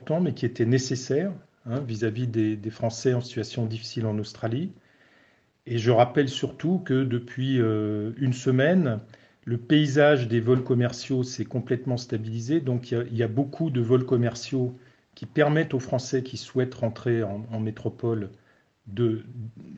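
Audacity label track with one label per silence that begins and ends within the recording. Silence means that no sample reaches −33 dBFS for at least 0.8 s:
4.670000	5.670000	silence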